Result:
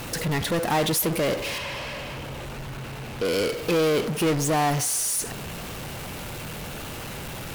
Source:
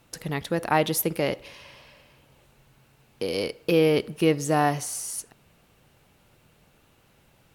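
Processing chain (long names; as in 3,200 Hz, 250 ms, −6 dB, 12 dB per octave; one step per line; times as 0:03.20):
power curve on the samples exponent 0.35
0:01.58–0:03.25: high-shelf EQ 5,300 Hz −9.5 dB
level −8 dB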